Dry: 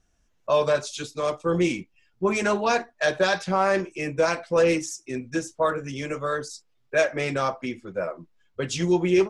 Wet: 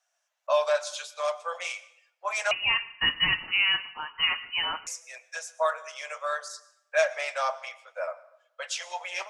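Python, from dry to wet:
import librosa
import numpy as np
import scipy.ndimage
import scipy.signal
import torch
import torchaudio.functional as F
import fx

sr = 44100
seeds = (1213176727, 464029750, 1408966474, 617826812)

y = scipy.signal.sosfilt(scipy.signal.butter(12, 560.0, 'highpass', fs=sr, output='sos'), x)
y = fx.rev_plate(y, sr, seeds[0], rt60_s=0.76, hf_ratio=0.75, predelay_ms=95, drr_db=18.0)
y = fx.freq_invert(y, sr, carrier_hz=3500, at=(2.51, 4.87))
y = y * librosa.db_to_amplitude(-1.5)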